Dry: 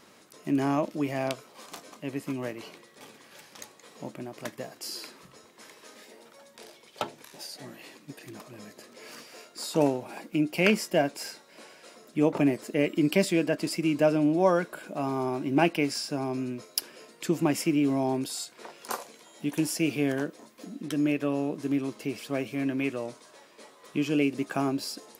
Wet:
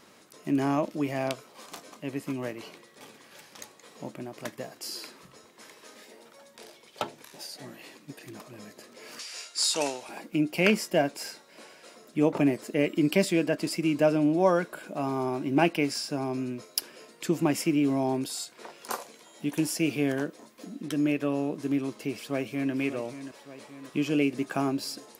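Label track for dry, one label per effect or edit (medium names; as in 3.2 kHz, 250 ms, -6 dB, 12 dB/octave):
9.190000	10.090000	frequency weighting ITU-R 468
22.150000	22.730000	echo throw 580 ms, feedback 60%, level -12 dB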